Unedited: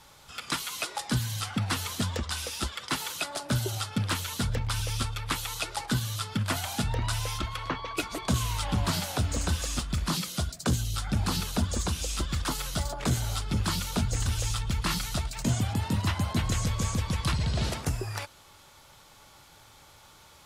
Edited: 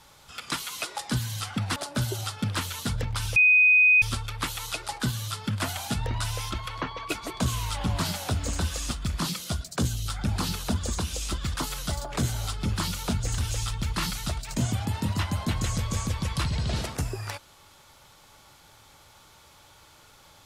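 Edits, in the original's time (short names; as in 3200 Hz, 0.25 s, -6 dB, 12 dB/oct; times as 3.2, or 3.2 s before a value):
1.76–3.3 cut
4.9 add tone 2500 Hz -14.5 dBFS 0.66 s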